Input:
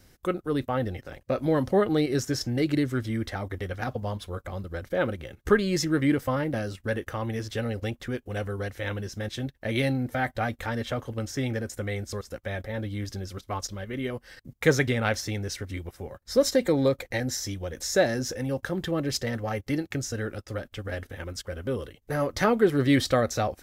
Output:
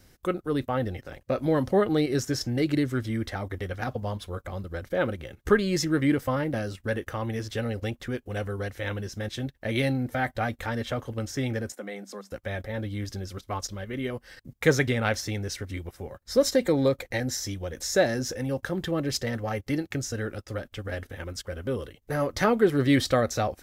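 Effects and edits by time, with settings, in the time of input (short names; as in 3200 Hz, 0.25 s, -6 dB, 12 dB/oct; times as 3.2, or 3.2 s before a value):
11.72–12.32 rippled Chebyshev high-pass 190 Hz, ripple 6 dB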